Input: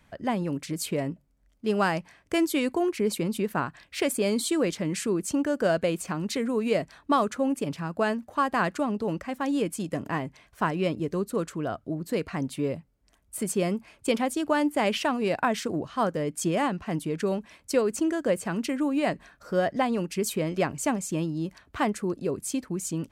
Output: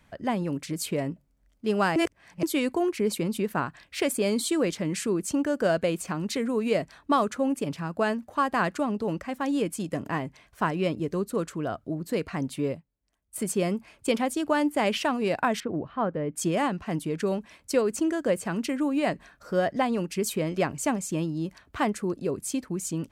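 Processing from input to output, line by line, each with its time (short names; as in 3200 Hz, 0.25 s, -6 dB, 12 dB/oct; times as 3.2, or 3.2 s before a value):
1.96–2.43 reverse
12.69–13.36 upward expander, over -54 dBFS
15.6–16.36 air absorption 490 m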